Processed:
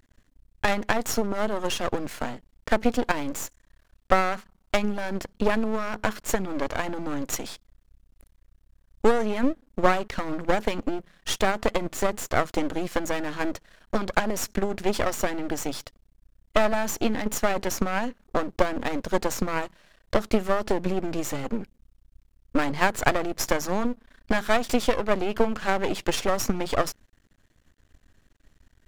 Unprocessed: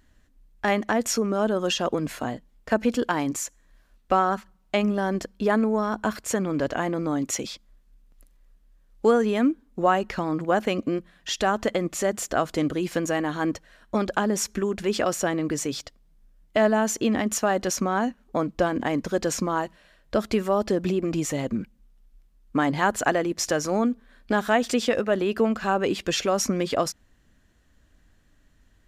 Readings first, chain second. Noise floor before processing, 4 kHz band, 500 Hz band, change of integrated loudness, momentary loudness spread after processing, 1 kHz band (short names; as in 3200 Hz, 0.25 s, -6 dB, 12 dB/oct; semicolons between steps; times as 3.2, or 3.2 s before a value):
-61 dBFS, -1.5 dB, -2.0 dB, -2.0 dB, 8 LU, -1.0 dB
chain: transient shaper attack +6 dB, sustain +2 dB; half-wave rectifier; gain +1 dB